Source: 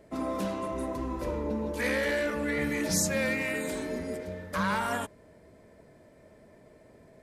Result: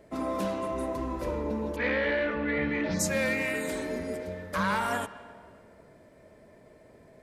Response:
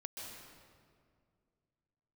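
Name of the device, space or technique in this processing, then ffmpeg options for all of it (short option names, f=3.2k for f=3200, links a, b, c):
filtered reverb send: -filter_complex "[0:a]asplit=3[a][b][c];[a]afade=t=out:st=1.75:d=0.02[d];[b]lowpass=f=3.6k:w=0.5412,lowpass=f=3.6k:w=1.3066,afade=t=in:st=1.75:d=0.02,afade=t=out:st=2.99:d=0.02[e];[c]afade=t=in:st=2.99:d=0.02[f];[d][e][f]amix=inputs=3:normalize=0,asplit=2[g][h];[h]highpass=320,lowpass=4.8k[i];[1:a]atrim=start_sample=2205[j];[i][j]afir=irnorm=-1:irlink=0,volume=-10dB[k];[g][k]amix=inputs=2:normalize=0"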